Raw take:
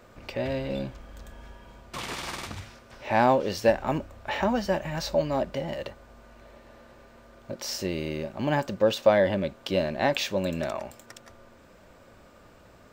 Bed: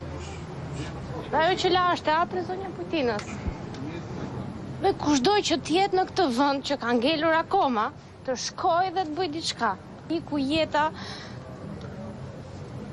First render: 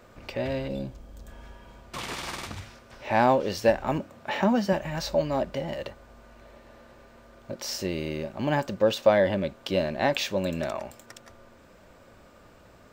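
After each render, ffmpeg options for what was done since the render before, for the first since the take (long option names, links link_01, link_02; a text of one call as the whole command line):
ffmpeg -i in.wav -filter_complex "[0:a]asettb=1/sr,asplit=3[link_01][link_02][link_03];[link_01]atrim=end=0.684[link_04];[link_02]atrim=start=0.68:end=1.28,asetpts=PTS-STARTPTS,afade=type=in:duration=0.004:curve=qsin,afade=type=out:start_time=0.596:duration=0.004:curve=qsin,equalizer=frequency=1800:width=0.54:gain=-9.5[link_05];[link_03]atrim=start=1.276[link_06];[link_04][link_05]acrossfade=duration=0.004:curve1=hsin:curve2=qsin[link_07];[link_07][link_06]acrossfade=duration=0.004:curve1=qsin:curve2=hsin,asettb=1/sr,asplit=3[link_08][link_09][link_10];[link_08]atrim=end=3.994[link_11];[link_09]atrim=start=3.99:end=4.73,asetpts=PTS-STARTPTS,afade=type=in:duration=0.004:curve=qsin,afade=type=out:start_time=0.736:duration=0.004:curve=qsin,highpass=frequency=170:width_type=q:width=1.9[link_12];[link_10]atrim=start=4.726[link_13];[link_11][link_12]acrossfade=duration=0.004:curve1=hsin:curve2=qsin[link_14];[link_14][link_13]acrossfade=duration=0.004:curve1=qsin:curve2=hsin" out.wav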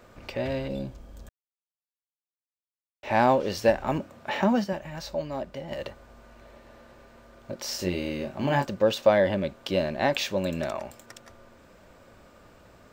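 ffmpeg -i in.wav -filter_complex "[0:a]asettb=1/sr,asplit=3[link_01][link_02][link_03];[link_01]atrim=end=7.774[link_04];[link_02]atrim=start=7.77:end=8.65,asetpts=PTS-STARTPTS,afade=type=in:duration=0.004:curve=qsin,afade=type=out:start_time=0.876:duration=0.004:curve=qsin,asplit=2[link_05][link_06];[link_06]adelay=22,volume=-4dB[link_07];[link_05][link_07]amix=inputs=2:normalize=0,atrim=end_sample=38808[link_08];[link_03]atrim=start=8.646[link_09];[link_04][link_08]acrossfade=duration=0.004:curve1=hsin:curve2=qsin[link_10];[link_10][link_09]acrossfade=duration=0.004:curve1=qsin:curve2=hsin,asplit=5[link_11][link_12][link_13][link_14][link_15];[link_11]atrim=end=1.29,asetpts=PTS-STARTPTS,afade=type=out:start_time=1.286:duration=0.004:curve=hsin[link_16];[link_12]atrim=start=1.29:end=3.03,asetpts=PTS-STARTPTS,volume=0[link_17];[link_13]atrim=start=3.03:end=4.642,asetpts=PTS-STARTPTS,afade=type=in:duration=0.004:curve=hsin[link_18];[link_14]atrim=start=4.638:end=5.712,asetpts=PTS-STARTPTS,volume=-6dB[link_19];[link_15]atrim=start=5.708[link_20];[link_16][link_17][link_18]concat=n=3:v=0:a=1[link_21];[link_21][link_19]acrossfade=duration=0.004:curve1=hsin:curve2=hsin[link_22];[link_22][link_20]acrossfade=duration=0.004:curve1=hsin:curve2=hsin" out.wav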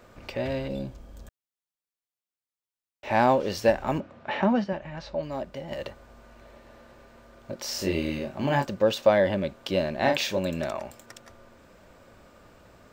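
ffmpeg -i in.wav -filter_complex "[0:a]asettb=1/sr,asplit=3[link_01][link_02][link_03];[link_01]atrim=end=4.004[link_04];[link_02]atrim=start=4:end=5.23,asetpts=PTS-STARTPTS,afade=type=in:duration=0.004:curve=qsin,afade=type=out:start_time=1.226:duration=0.004:curve=qsin,lowpass=3500[link_05];[link_03]atrim=start=5.226[link_06];[link_04][link_05]acrossfade=duration=0.004:curve1=hsin:curve2=qsin[link_07];[link_07][link_06]acrossfade=duration=0.004:curve1=qsin:curve2=hsin,asettb=1/sr,asplit=3[link_08][link_09][link_10];[link_08]atrim=end=7.734[link_11];[link_09]atrim=start=7.73:end=8.19,asetpts=PTS-STARTPTS,afade=type=in:duration=0.004:curve=qsin,afade=type=out:start_time=0.456:duration=0.004:curve=qsin,asplit=2[link_12][link_13];[link_13]adelay=25,volume=-3.5dB[link_14];[link_12][link_14]amix=inputs=2:normalize=0,atrim=end_sample=20286[link_15];[link_10]atrim=start=8.186[link_16];[link_11][link_15]acrossfade=duration=0.004:curve1=hsin:curve2=qsin[link_17];[link_17][link_16]acrossfade=duration=0.004:curve1=qsin:curve2=hsin,asettb=1/sr,asplit=3[link_18][link_19][link_20];[link_18]atrim=end=9.994[link_21];[link_19]atrim=start=9.99:end=10.39,asetpts=PTS-STARTPTS,afade=type=in:duration=0.004:curve=qsin,afade=type=out:start_time=0.396:duration=0.004:curve=qsin,asplit=2[link_22][link_23];[link_23]adelay=38,volume=-4.5dB[link_24];[link_22][link_24]amix=inputs=2:normalize=0,atrim=end_sample=17640[link_25];[link_20]atrim=start=10.386[link_26];[link_21][link_25]acrossfade=duration=0.004:curve1=hsin:curve2=qsin[link_27];[link_27][link_26]acrossfade=duration=0.004:curve1=qsin:curve2=hsin" out.wav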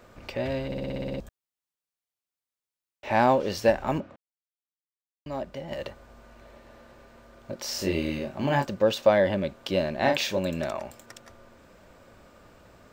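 ffmpeg -i in.wav -filter_complex "[0:a]asplit=12[link_01][link_02][link_03][link_04][link_05][link_06][link_07][link_08][link_09][link_10][link_11][link_12];[link_01]atrim=end=0.722[link_13];[link_02]atrim=start=0.658:end=0.722[link_14];[link_03]atrim=start=0.658:end=0.722[link_15];[link_04]atrim=start=0.658:end=0.722[link_16];[link_05]atrim=start=0.658:end=0.722[link_17];[link_06]atrim=start=0.658:end=0.722[link_18];[link_07]atrim=start=0.658:end=0.722[link_19];[link_08]atrim=start=0.658:end=0.722[link_20];[link_09]atrim=start=0.658:end=0.722[link_21];[link_10]atrim=start=1.198:end=4.16,asetpts=PTS-STARTPTS,afade=type=out:start_time=2.958:duration=0.004:curve=hsin[link_22];[link_11]atrim=start=4.16:end=5.26,asetpts=PTS-STARTPTS,volume=0[link_23];[link_12]atrim=start=5.26,asetpts=PTS-STARTPTS,afade=type=in:duration=0.004:curve=hsin[link_24];[link_13][link_14]acrossfade=duration=0.004:curve1=hsin:curve2=hsin[link_25];[link_25][link_15]acrossfade=duration=0.004:curve1=hsin:curve2=hsin[link_26];[link_26][link_16]acrossfade=duration=0.004:curve1=hsin:curve2=hsin[link_27];[link_27][link_17]acrossfade=duration=0.004:curve1=hsin:curve2=hsin[link_28];[link_28][link_18]acrossfade=duration=0.004:curve1=hsin:curve2=hsin[link_29];[link_29][link_19]acrossfade=duration=0.004:curve1=hsin:curve2=hsin[link_30];[link_30][link_20]acrossfade=duration=0.004:curve1=hsin:curve2=hsin[link_31];[link_31][link_21]acrossfade=duration=0.004:curve1=hsin:curve2=hsin[link_32];[link_22][link_23][link_24]concat=n=3:v=0:a=1[link_33];[link_32][link_33]acrossfade=duration=0.004:curve1=hsin:curve2=hsin" out.wav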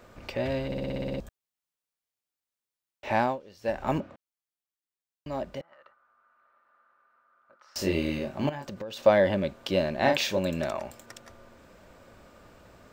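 ffmpeg -i in.wav -filter_complex "[0:a]asettb=1/sr,asplit=3[link_01][link_02][link_03];[link_01]atrim=end=5.614[link_04];[link_02]atrim=start=5.61:end=7.76,asetpts=PTS-STARTPTS,afade=type=in:duration=0.004:curve=qsin,afade=type=out:start_time=2.146:duration=0.004:curve=qsin,bandpass=frequency=1300:width_type=q:width=8.7[link_05];[link_03]atrim=start=7.756[link_06];[link_04][link_05]acrossfade=duration=0.004:curve1=hsin:curve2=qsin[link_07];[link_07][link_06]acrossfade=duration=0.004:curve1=qsin:curve2=hsin,asettb=1/sr,asplit=3[link_08][link_09][link_10];[link_08]atrim=end=8.494[link_11];[link_09]atrim=start=8.49:end=9.03,asetpts=PTS-STARTPTS,afade=type=in:duration=0.004:curve=qsin,afade=type=out:start_time=0.536:duration=0.004:curve=qsin,acompressor=threshold=-34dB:ratio=8:attack=3.2:release=140:knee=1:detection=peak[link_12];[link_10]atrim=start=9.026[link_13];[link_11][link_12]acrossfade=duration=0.004:curve1=hsin:curve2=qsin[link_14];[link_14][link_13]acrossfade=duration=0.004:curve1=qsin:curve2=hsin,asplit=3[link_15][link_16][link_17];[link_15]atrim=end=3.4,asetpts=PTS-STARTPTS,afade=type=out:start_time=3.09:duration=0.31:silence=0.0841395[link_18];[link_16]atrim=start=3.4:end=3.59,asetpts=PTS-STARTPTS,volume=-21.5dB[link_19];[link_17]atrim=start=3.59,asetpts=PTS-STARTPTS,afade=type=in:duration=0.31:silence=0.0841395[link_20];[link_18][link_19][link_20]concat=n=3:v=0:a=1" out.wav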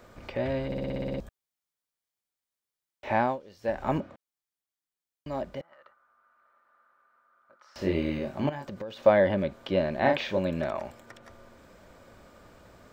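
ffmpeg -i in.wav -filter_complex "[0:a]bandreject=frequency=2700:width=17,acrossover=split=3300[link_01][link_02];[link_02]acompressor=threshold=-57dB:ratio=4:attack=1:release=60[link_03];[link_01][link_03]amix=inputs=2:normalize=0" out.wav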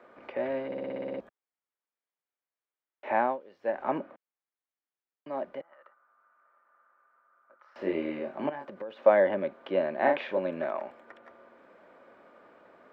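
ffmpeg -i in.wav -filter_complex "[0:a]highpass=frequency=140:poles=1,acrossover=split=230 2700:gain=0.0891 1 0.0631[link_01][link_02][link_03];[link_01][link_02][link_03]amix=inputs=3:normalize=0" out.wav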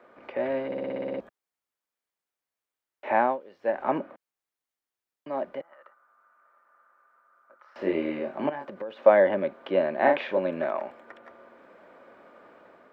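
ffmpeg -i in.wav -af "dynaudnorm=framelen=130:gausssize=5:maxgain=3.5dB" out.wav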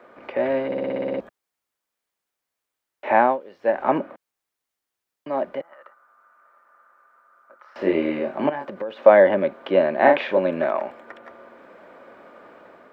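ffmpeg -i in.wav -af "volume=6dB,alimiter=limit=-1dB:level=0:latency=1" out.wav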